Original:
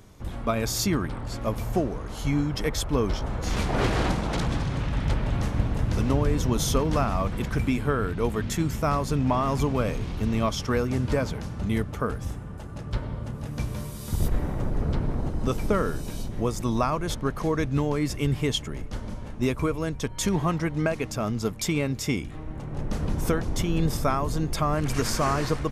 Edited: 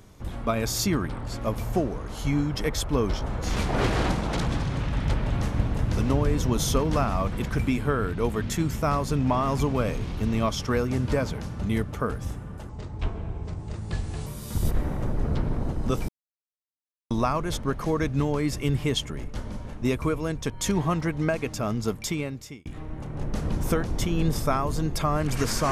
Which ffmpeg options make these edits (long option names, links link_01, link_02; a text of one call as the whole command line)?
ffmpeg -i in.wav -filter_complex "[0:a]asplit=6[link_01][link_02][link_03][link_04][link_05][link_06];[link_01]atrim=end=12.694[link_07];[link_02]atrim=start=12.69:end=13.84,asetpts=PTS-STARTPTS,asetrate=32193,aresample=44100[link_08];[link_03]atrim=start=13.836:end=15.66,asetpts=PTS-STARTPTS,afade=type=out:start_time=1.82:duration=0.004:curve=hsin[link_09];[link_04]atrim=start=15.66:end=16.68,asetpts=PTS-STARTPTS,volume=0[link_10];[link_05]atrim=start=16.68:end=22.23,asetpts=PTS-STARTPTS,afade=type=in:duration=0.004:curve=hsin,afade=type=out:start_time=4.82:duration=0.73[link_11];[link_06]atrim=start=22.23,asetpts=PTS-STARTPTS,afade=type=in:duration=0.004:curve=hsin[link_12];[link_07][link_08]acrossfade=duration=0.004:curve1=hsin:curve2=hsin[link_13];[link_09][link_10][link_11][link_12]concat=n=4:v=0:a=1[link_14];[link_13][link_14]acrossfade=duration=0.004:curve1=hsin:curve2=hsin" out.wav